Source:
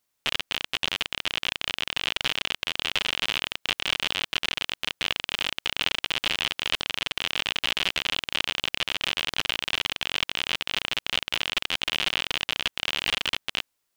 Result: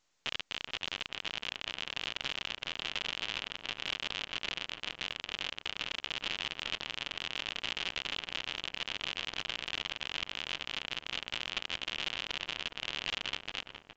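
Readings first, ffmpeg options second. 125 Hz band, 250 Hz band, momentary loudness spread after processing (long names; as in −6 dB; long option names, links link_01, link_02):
−9.0 dB, −9.0 dB, 3 LU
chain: -filter_complex "[0:a]alimiter=limit=-14.5dB:level=0:latency=1:release=132,asplit=2[link_01][link_02];[link_02]adelay=415,lowpass=frequency=1500:poles=1,volume=-6dB,asplit=2[link_03][link_04];[link_04]adelay=415,lowpass=frequency=1500:poles=1,volume=0.43,asplit=2[link_05][link_06];[link_06]adelay=415,lowpass=frequency=1500:poles=1,volume=0.43,asplit=2[link_07][link_08];[link_08]adelay=415,lowpass=frequency=1500:poles=1,volume=0.43,asplit=2[link_09][link_10];[link_10]adelay=415,lowpass=frequency=1500:poles=1,volume=0.43[link_11];[link_03][link_05][link_07][link_09][link_11]amix=inputs=5:normalize=0[link_12];[link_01][link_12]amix=inputs=2:normalize=0,volume=-4.5dB" -ar 16000 -c:a pcm_mulaw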